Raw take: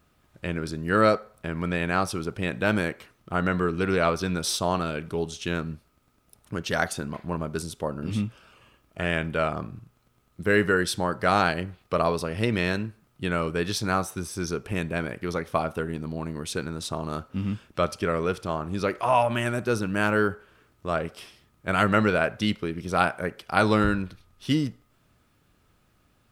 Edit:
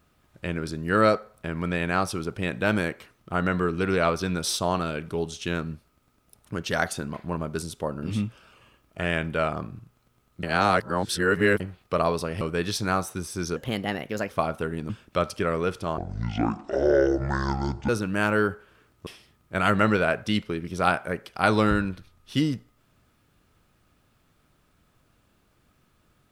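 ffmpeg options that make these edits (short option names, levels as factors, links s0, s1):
-filter_complex "[0:a]asplit=10[s0][s1][s2][s3][s4][s5][s6][s7][s8][s9];[s0]atrim=end=10.432[s10];[s1]atrim=start=10.428:end=11.602,asetpts=PTS-STARTPTS,areverse[s11];[s2]atrim=start=11.598:end=12.412[s12];[s3]atrim=start=13.418:end=14.574[s13];[s4]atrim=start=14.57:end=15.46,asetpts=PTS-STARTPTS,asetrate=53361,aresample=44100,atrim=end_sample=32437,asetpts=PTS-STARTPTS[s14];[s5]atrim=start=15.456:end=16.062[s15];[s6]atrim=start=17.518:end=18.604[s16];[s7]atrim=start=18.6:end=19.69,asetpts=PTS-STARTPTS,asetrate=25137,aresample=44100[s17];[s8]atrim=start=19.686:end=20.872[s18];[s9]atrim=start=21.198[s19];[s10][s11]acrossfade=d=0.004:c1=hsin:c2=hsin[s20];[s20][s12]acrossfade=d=0.004:c1=hsin:c2=hsin[s21];[s21][s13]acrossfade=d=0.004:c1=hsin:c2=hsin[s22];[s22][s14]acrossfade=d=0.004:c1=hsin:c2=hsin[s23];[s23][s15]acrossfade=d=0.004:c1=hsin:c2=hsin[s24];[s24][s16]acrossfade=d=0.004:c1=hsin:c2=hsin[s25];[s25][s17]acrossfade=d=0.004:c1=hsin:c2=hsin[s26];[s26][s18]acrossfade=d=0.004:c1=hsin:c2=hsin[s27];[s27][s19]acrossfade=d=0.004:c1=hsin:c2=hsin"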